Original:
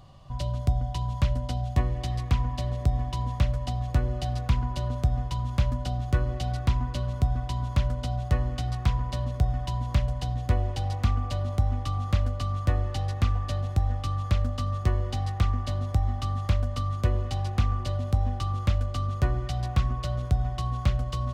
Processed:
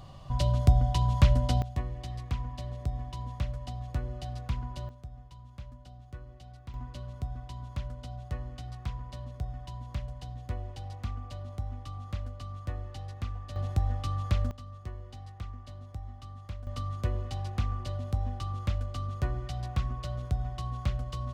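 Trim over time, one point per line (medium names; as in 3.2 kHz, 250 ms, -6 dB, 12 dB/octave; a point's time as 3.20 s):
+3.5 dB
from 1.62 s -8.5 dB
from 4.89 s -20 dB
from 6.74 s -11.5 dB
from 13.56 s -3 dB
from 14.51 s -16 dB
from 16.67 s -6 dB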